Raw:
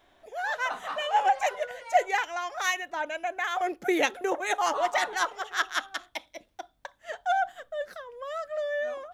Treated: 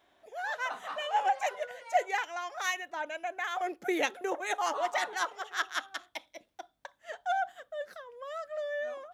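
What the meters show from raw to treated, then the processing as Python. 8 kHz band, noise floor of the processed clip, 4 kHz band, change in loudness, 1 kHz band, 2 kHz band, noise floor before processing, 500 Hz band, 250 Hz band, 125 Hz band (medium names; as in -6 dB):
-4.5 dB, -72 dBFS, -4.5 dB, -4.5 dB, -4.5 dB, -4.5 dB, -65 dBFS, -5.0 dB, -5.0 dB, no reading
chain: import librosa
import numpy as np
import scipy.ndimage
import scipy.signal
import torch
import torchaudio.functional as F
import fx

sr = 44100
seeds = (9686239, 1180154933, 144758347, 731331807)

y = fx.highpass(x, sr, hz=140.0, slope=6)
y = y * librosa.db_to_amplitude(-4.5)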